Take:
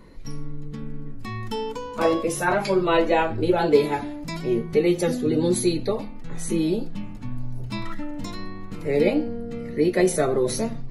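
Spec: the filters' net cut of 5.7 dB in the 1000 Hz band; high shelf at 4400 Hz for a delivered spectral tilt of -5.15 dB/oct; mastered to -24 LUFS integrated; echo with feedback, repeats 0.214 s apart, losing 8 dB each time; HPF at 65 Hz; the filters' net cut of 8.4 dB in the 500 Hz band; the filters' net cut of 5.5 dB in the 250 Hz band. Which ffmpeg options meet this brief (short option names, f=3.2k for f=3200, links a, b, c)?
-af "highpass=65,equalizer=f=250:t=o:g=-3.5,equalizer=f=500:t=o:g=-9,equalizer=f=1k:t=o:g=-3.5,highshelf=f=4.4k:g=-5,aecho=1:1:214|428|642|856|1070:0.398|0.159|0.0637|0.0255|0.0102,volume=5.5dB"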